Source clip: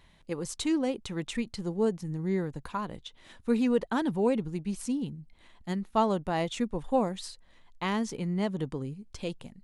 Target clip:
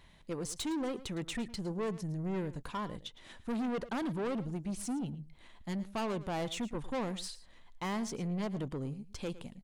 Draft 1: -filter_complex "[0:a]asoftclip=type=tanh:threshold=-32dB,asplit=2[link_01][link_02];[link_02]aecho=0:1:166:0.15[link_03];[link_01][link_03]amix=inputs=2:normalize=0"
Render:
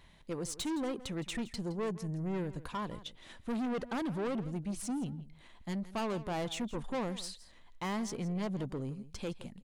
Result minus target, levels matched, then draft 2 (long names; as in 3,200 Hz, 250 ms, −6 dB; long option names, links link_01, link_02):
echo 56 ms late
-filter_complex "[0:a]asoftclip=type=tanh:threshold=-32dB,asplit=2[link_01][link_02];[link_02]aecho=0:1:110:0.15[link_03];[link_01][link_03]amix=inputs=2:normalize=0"